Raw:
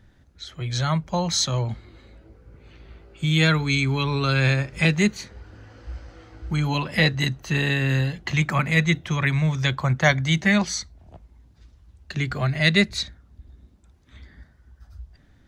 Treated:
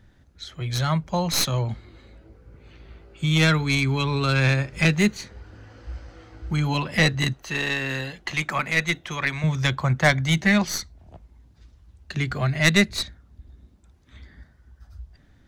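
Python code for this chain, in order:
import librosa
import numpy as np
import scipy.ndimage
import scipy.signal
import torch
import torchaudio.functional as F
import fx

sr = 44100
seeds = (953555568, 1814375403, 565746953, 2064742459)

y = fx.tracing_dist(x, sr, depth_ms=0.059)
y = fx.peak_eq(y, sr, hz=110.0, db=-12.5, octaves=2.2, at=(7.33, 9.44))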